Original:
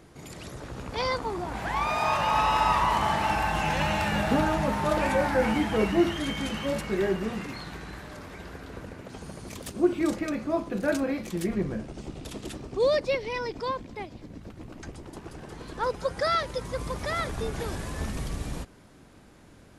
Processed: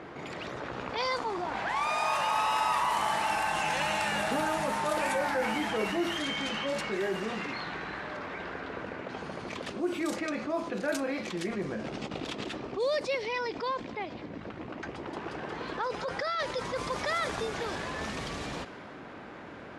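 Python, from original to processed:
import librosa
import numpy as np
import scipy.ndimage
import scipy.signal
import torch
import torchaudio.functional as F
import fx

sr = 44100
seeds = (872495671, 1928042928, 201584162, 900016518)

y = fx.peak_eq(x, sr, hz=9500.0, db=6.5, octaves=0.77, at=(1.69, 5.19))
y = fx.over_compress(y, sr, threshold_db=-42.0, ratio=-0.5, at=(11.83, 12.45), fade=0.02)
y = fx.over_compress(y, sr, threshold_db=-29.0, ratio=-1.0, at=(14.99, 17.44), fade=0.02)
y = fx.env_lowpass(y, sr, base_hz=2100.0, full_db=-20.5)
y = fx.highpass(y, sr, hz=540.0, slope=6)
y = fx.env_flatten(y, sr, amount_pct=50)
y = y * 10.0 ** (-4.5 / 20.0)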